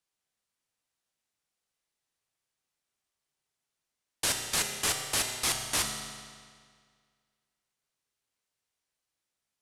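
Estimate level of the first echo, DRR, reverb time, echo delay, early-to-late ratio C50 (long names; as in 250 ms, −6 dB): no echo audible, 3.0 dB, 1.9 s, no echo audible, 5.0 dB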